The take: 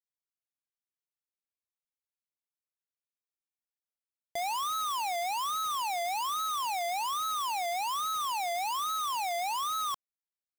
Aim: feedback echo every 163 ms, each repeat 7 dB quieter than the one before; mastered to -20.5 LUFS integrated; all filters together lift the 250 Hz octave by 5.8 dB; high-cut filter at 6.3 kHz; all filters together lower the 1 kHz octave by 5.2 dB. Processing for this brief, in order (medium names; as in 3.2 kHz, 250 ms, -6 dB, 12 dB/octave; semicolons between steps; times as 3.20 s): low-pass 6.3 kHz; peaking EQ 250 Hz +8 dB; peaking EQ 1 kHz -7.5 dB; feedback delay 163 ms, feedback 45%, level -7 dB; trim +14 dB